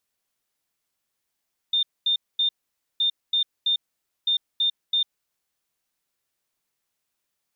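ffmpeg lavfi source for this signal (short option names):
-f lavfi -i "aevalsrc='0.119*sin(2*PI*3620*t)*clip(min(mod(mod(t,1.27),0.33),0.1-mod(mod(t,1.27),0.33))/0.005,0,1)*lt(mod(t,1.27),0.99)':d=3.81:s=44100"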